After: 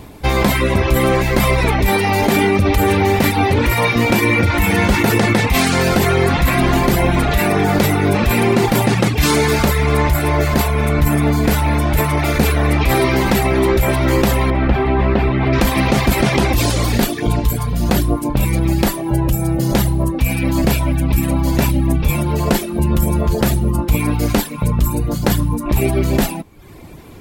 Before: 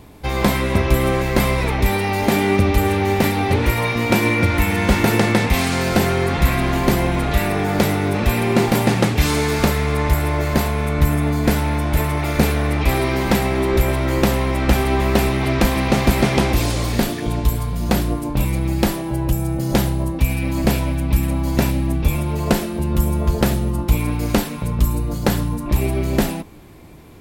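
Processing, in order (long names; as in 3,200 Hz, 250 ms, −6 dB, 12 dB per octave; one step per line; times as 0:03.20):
reverb reduction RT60 0.64 s
in parallel at 0 dB: compressor whose output falls as the input rises −20 dBFS, ratio −0.5
0:14.50–0:15.53: on the sum: high-frequency loss of the air 370 metres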